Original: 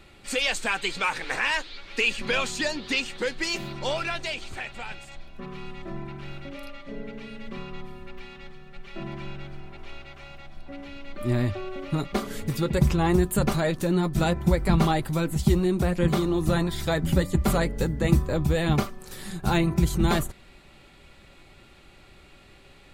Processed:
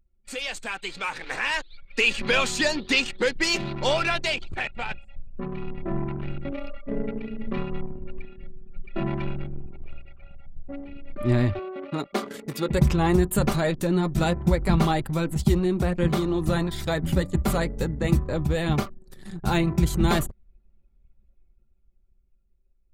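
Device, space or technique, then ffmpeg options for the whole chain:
voice memo with heavy noise removal: -filter_complex "[0:a]asettb=1/sr,asplit=3[a][b][c];[a]atrim=end=11.594[d];[b]atrim=start=11.59:end=12.69,asetpts=PTS-STARTPTS,afade=t=in:d=0.004:c=qsin,afade=t=out:st=1.096:d=0.004:c=qsin,highpass=240[e];[c]atrim=start=12.686[f];[d][e]acrossfade=d=0.004:c1=hsin:c2=qsin[g];[g][f]acrossfade=d=0.004:c1=qsin:c2=hsin,anlmdn=1.58,dynaudnorm=f=200:g=17:m=15.5dB,volume=-6.5dB"

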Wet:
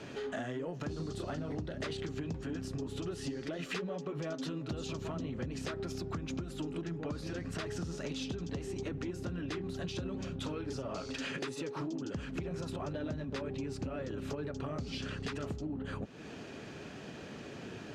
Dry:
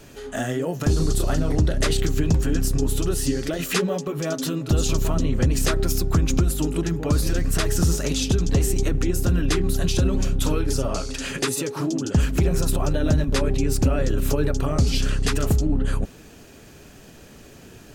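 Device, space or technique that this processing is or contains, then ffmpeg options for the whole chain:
AM radio: -af "highpass=120,lowpass=4k,acompressor=threshold=-37dB:ratio=6,asoftclip=type=tanh:threshold=-29.5dB,volume=1.5dB"

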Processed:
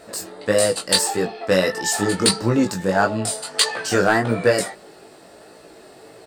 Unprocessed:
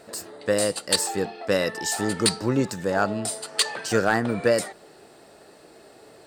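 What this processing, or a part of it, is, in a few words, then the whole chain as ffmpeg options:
double-tracked vocal: -filter_complex "[0:a]asplit=2[a][b];[b]adelay=16,volume=-11dB[c];[a][c]amix=inputs=2:normalize=0,flanger=delay=17.5:depth=4.3:speed=1.6,volume=7.5dB"

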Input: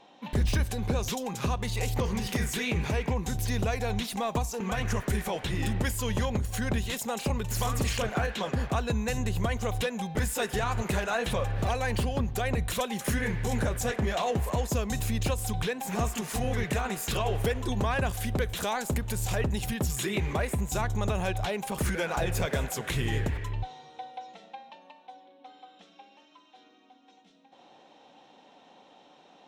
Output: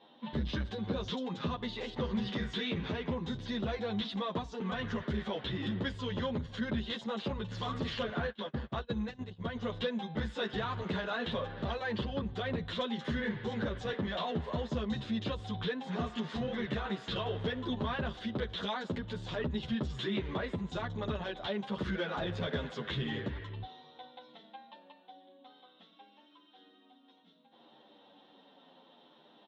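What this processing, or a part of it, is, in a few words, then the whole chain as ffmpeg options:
barber-pole flanger into a guitar amplifier: -filter_complex "[0:a]asplit=2[a][b];[b]adelay=9.4,afreqshift=-0.62[c];[a][c]amix=inputs=2:normalize=1,asoftclip=type=tanh:threshold=-23.5dB,highpass=90,equalizer=f=110:t=q:w=4:g=-6,equalizer=f=220:t=q:w=4:g=3,equalizer=f=760:t=q:w=4:g=-6,equalizer=f=2.4k:t=q:w=4:g=-9,equalizer=f=3.5k:t=q:w=4:g=7,lowpass=f=3.9k:w=0.5412,lowpass=f=3.9k:w=1.3066,asplit=3[d][e][f];[d]afade=t=out:st=8.29:d=0.02[g];[e]agate=range=-28dB:threshold=-34dB:ratio=16:detection=peak,afade=t=in:st=8.29:d=0.02,afade=t=out:st=9.54:d=0.02[h];[f]afade=t=in:st=9.54:d=0.02[i];[g][h][i]amix=inputs=3:normalize=0"

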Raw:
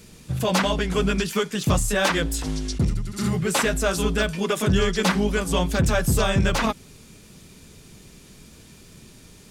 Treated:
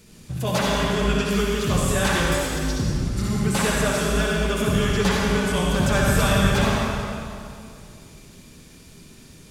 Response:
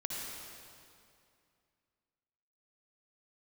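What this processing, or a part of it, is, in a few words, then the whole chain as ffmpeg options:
stairwell: -filter_complex "[0:a]asettb=1/sr,asplit=3[a][b][c];[a]atrim=end=5.844[d];[b]atrim=start=5.84:end=6.39,asetpts=PTS-STARTPTS,afade=t=in:d=0.004:c=qsin,afade=t=out:st=0.546:d=0.004:c=qsin,equalizer=f=1.8k:t=o:w=2.6:g=4[e];[c]atrim=start=6.386[f];[d][e]acrossfade=d=0.004:c1=hsin:c2=qsin[g];[g][f]acrossfade=d=0.004:c1=qsin:c2=hsin[h];[1:a]atrim=start_sample=2205[i];[h][i]afir=irnorm=-1:irlink=0,volume=-1.5dB"

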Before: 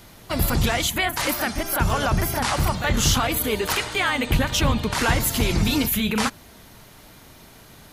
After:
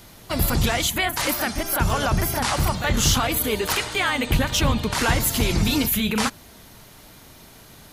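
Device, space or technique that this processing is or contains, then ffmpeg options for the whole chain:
exciter from parts: -filter_complex "[0:a]asplit=2[a][b];[b]highpass=2.6k,asoftclip=type=tanh:threshold=-25dB,volume=-11dB[c];[a][c]amix=inputs=2:normalize=0"

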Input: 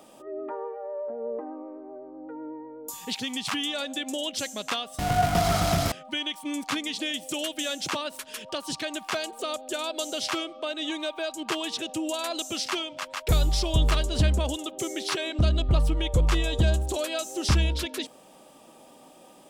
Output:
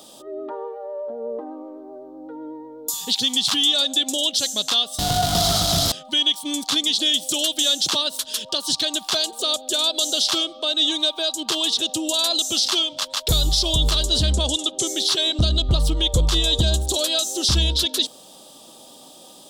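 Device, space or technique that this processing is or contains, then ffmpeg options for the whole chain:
over-bright horn tweeter: -filter_complex "[0:a]highshelf=f=2.9k:t=q:w=3:g=8,alimiter=limit=-13dB:level=0:latency=1:release=49,asettb=1/sr,asplit=3[a][b][c];[a]atrim=end=14.324[d];[b]atrim=start=14.32:end=14.87,asetpts=PTS-STARTPTS,afade=t=in:d=0.004:c=qsin,afade=t=out:st=0.546:d=0.004:c=qsin,lowpass=f=10k:w=0.5412,lowpass=f=10k:w=1.3066[e];[c]atrim=start=14.866[f];[d][e]acrossfade=d=0.004:c1=hsin:c2=qsin[g];[g][f]acrossfade=d=0.004:c1=qsin:c2=hsin,volume=3.5dB"

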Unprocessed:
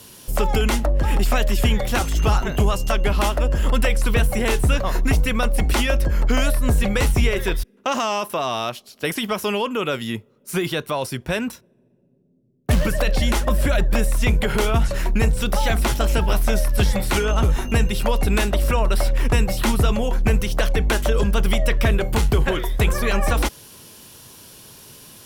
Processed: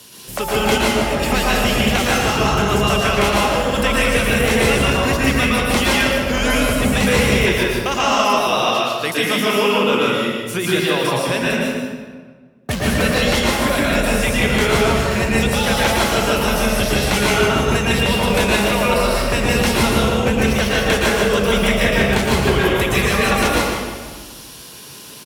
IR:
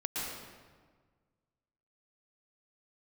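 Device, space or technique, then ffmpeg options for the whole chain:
PA in a hall: -filter_complex "[0:a]highpass=110,equalizer=f=3.9k:t=o:w=2.9:g=5,aecho=1:1:153:0.376[a];[1:a]atrim=start_sample=2205[b];[a][b]afir=irnorm=-1:irlink=0"

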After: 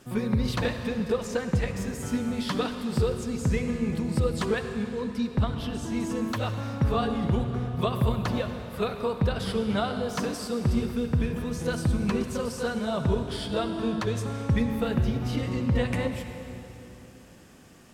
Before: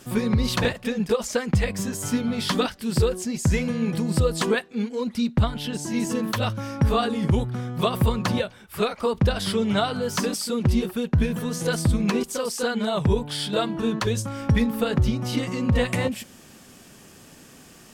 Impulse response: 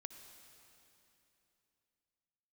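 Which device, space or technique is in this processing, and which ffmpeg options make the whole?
swimming-pool hall: -filter_complex "[1:a]atrim=start_sample=2205[a];[0:a][a]afir=irnorm=-1:irlink=0,highshelf=f=3.5k:g=-7,volume=1.5dB"

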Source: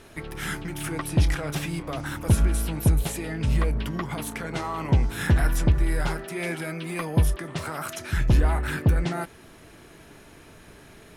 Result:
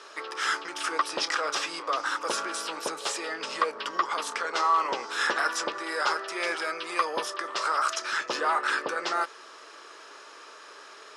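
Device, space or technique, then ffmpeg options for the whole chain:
phone speaker on a table: -af "highpass=f=470:w=0.5412,highpass=f=470:w=1.3066,equalizer=f=700:t=q:w=4:g=-7,equalizer=f=1.2k:t=q:w=4:g=9,equalizer=f=2.2k:t=q:w=4:g=-5,equalizer=f=5.1k:t=q:w=4:g=7,lowpass=f=7.7k:w=0.5412,lowpass=f=7.7k:w=1.3066,volume=4.5dB"

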